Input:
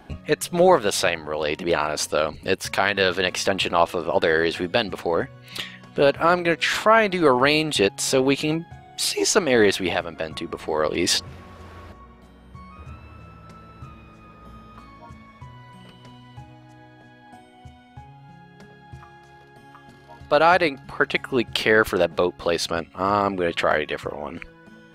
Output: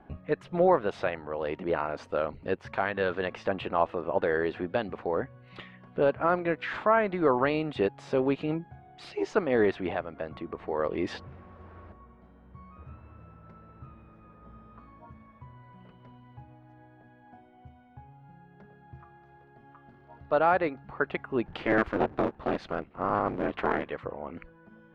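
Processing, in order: 21.45–23.90 s: cycle switcher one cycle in 3, inverted; low-pass 1.6 kHz 12 dB/octave; trim -6.5 dB

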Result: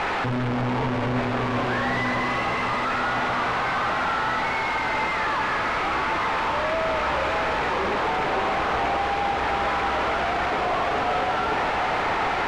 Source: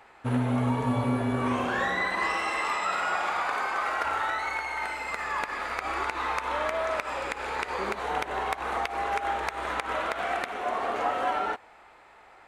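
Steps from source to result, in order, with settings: one-bit comparator; low-pass 2.5 kHz 12 dB/octave; echo whose repeats swap between lows and highs 572 ms, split 940 Hz, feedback 73%, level -5.5 dB; trim +5.5 dB

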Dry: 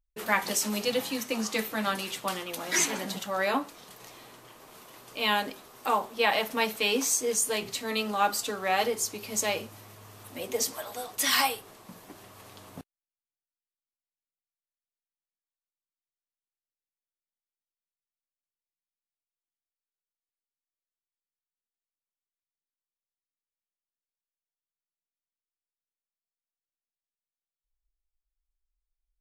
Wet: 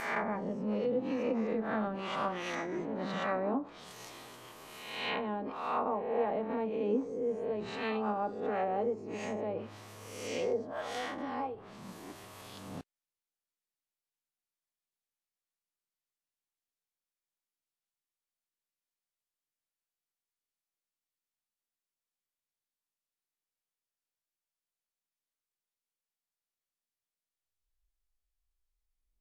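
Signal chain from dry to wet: reverse spectral sustain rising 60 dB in 1.07 s; low-pass that closes with the level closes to 520 Hz, closed at -22 dBFS; trim -2.5 dB

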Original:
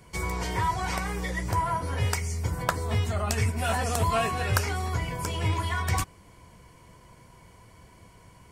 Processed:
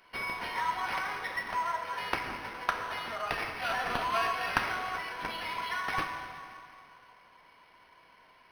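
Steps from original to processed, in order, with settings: high-pass 990 Hz 12 dB/octave; plate-style reverb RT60 2.6 s, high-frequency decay 0.8×, DRR 3 dB; decimation joined by straight lines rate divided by 6×

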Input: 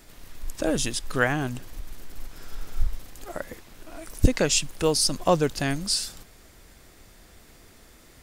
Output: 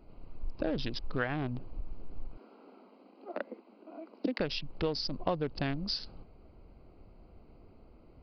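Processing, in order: local Wiener filter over 25 samples; 2.37–4.40 s: steep high-pass 200 Hz 96 dB/octave; compression 6:1, threshold -26 dBFS, peak gain reduction 11 dB; resampled via 11.025 kHz; trim -2 dB

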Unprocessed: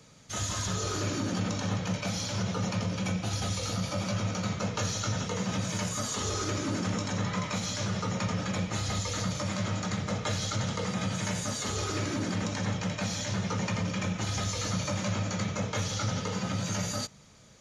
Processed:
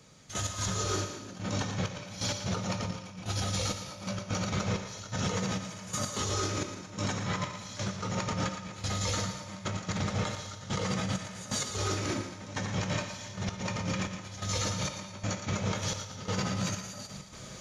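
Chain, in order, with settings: compressor with a negative ratio -35 dBFS, ratio -0.5; peak limiter -28 dBFS, peak gain reduction 10.5 dB; trance gate "...x.xxxx...xxxx" 129 bpm -12 dB; thinning echo 115 ms, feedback 44%, level -9 dB; on a send at -9 dB: reverberation RT60 1.2 s, pre-delay 3 ms; on the sum: trim +6 dB

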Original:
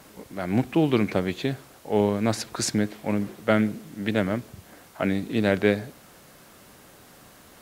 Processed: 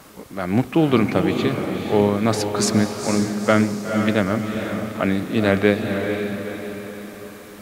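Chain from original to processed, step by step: peaking EQ 1.2 kHz +7 dB 0.21 oct; echo that smears into a reverb 475 ms, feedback 50%, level -5.5 dB; trim +4 dB

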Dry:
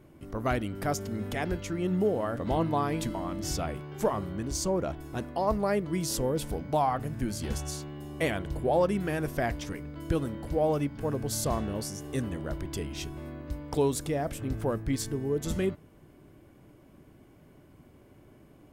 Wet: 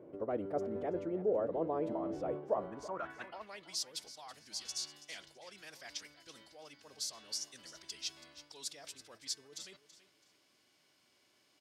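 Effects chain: high-pass 52 Hz; reverse; compression 6:1, threshold -36 dBFS, peak gain reduction 14.5 dB; reverse; band-pass sweep 490 Hz -> 4.8 kHz, 3.89–6.07 s; feedback delay 531 ms, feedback 25%, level -15 dB; time stretch by phase-locked vocoder 0.62×; trim +10.5 dB

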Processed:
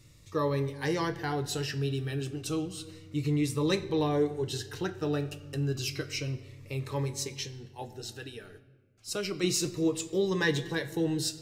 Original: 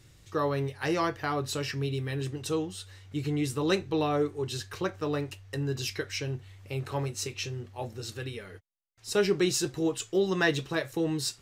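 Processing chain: 7.22–9.44 s: harmonic-percussive split harmonic -8 dB; simulated room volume 1200 m³, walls mixed, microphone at 0.43 m; Shepard-style phaser falling 0.31 Hz

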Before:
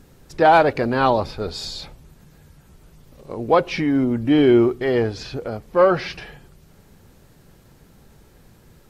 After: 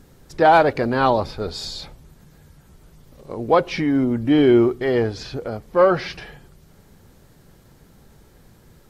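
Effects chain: peaking EQ 2.6 kHz -3.5 dB 0.21 oct

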